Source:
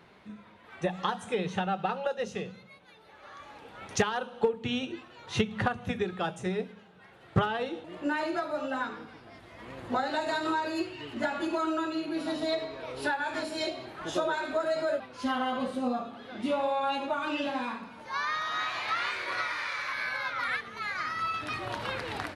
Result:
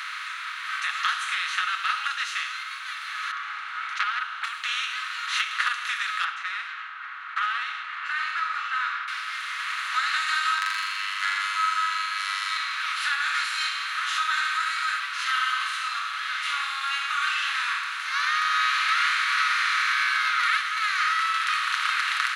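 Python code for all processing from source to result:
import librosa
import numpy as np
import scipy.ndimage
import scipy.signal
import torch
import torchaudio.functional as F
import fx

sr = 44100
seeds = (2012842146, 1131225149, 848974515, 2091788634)

y = fx.chain(x, sr, fx.lowpass(hz=1200.0, slope=12),
    fx.comb(ms=1.4, depth=0.31),
    fx.transformer_sat(knee_hz=1400.0), at=(3.31, 4.44))
y = fx.chain(y, sr, fx.env_lowpass(base_hz=1000.0, full_db=-27.5),
    fx.lowpass(hz=1500.0, slope=12), at=(6.24, 9.08))
y = fx.chain(y, sr, fx.robotise(hz=98.9),
    fx.notch(hz=7400.0, q=26.0),
    fx.room_flutter(wall_m=7.1, rt60_s=0.96), at=(10.58, 12.57))
y = fx.bin_compress(y, sr, power=0.4)
y = scipy.signal.sosfilt(scipy.signal.cheby1(5, 1.0, 1200.0, 'highpass', fs=sr, output='sos'), y)
y = y + 0.46 * np.pad(y, (int(7.1 * sr / 1000.0), 0))[:len(y)]
y = F.gain(torch.from_numpy(y), 2.5).numpy()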